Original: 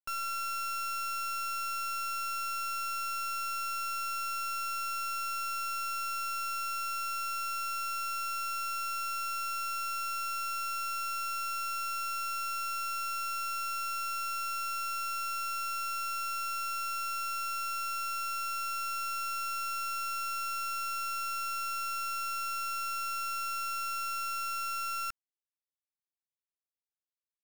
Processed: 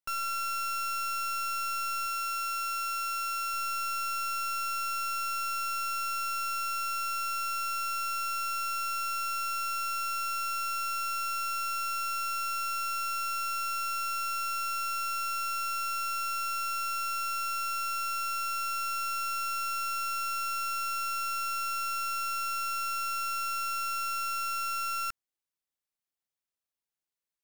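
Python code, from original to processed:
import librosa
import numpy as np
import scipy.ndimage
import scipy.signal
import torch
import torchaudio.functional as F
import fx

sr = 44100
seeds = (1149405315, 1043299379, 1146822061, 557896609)

y = fx.low_shelf(x, sr, hz=250.0, db=-6.0, at=(2.06, 3.54))
y = F.gain(torch.from_numpy(y), 2.5).numpy()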